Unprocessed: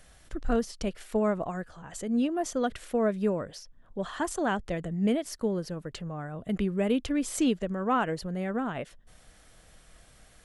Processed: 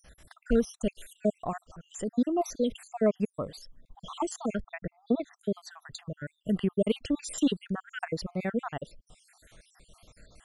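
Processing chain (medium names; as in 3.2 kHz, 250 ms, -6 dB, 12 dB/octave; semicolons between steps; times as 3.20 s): random holes in the spectrogram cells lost 64%; 4.60–5.35 s: low-pass 2.5 kHz -> 4.4 kHz 24 dB/octave; trim +3 dB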